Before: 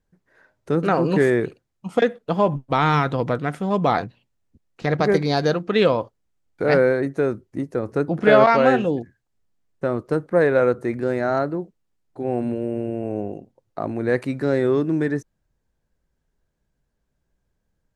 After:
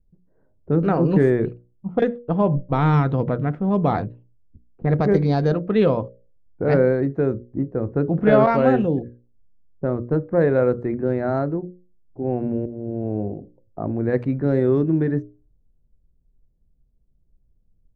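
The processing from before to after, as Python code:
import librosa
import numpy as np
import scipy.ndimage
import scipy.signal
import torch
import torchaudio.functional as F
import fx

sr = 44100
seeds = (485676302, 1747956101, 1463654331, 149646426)

y = fx.edit(x, sr, fx.fade_in_from(start_s=12.66, length_s=0.5, curve='qsin', floor_db=-21.0), tone=tone)
y = fx.hum_notches(y, sr, base_hz=60, count=10)
y = fx.env_lowpass(y, sr, base_hz=540.0, full_db=-14.5)
y = fx.tilt_eq(y, sr, slope=-3.5)
y = y * librosa.db_to_amplitude(-4.0)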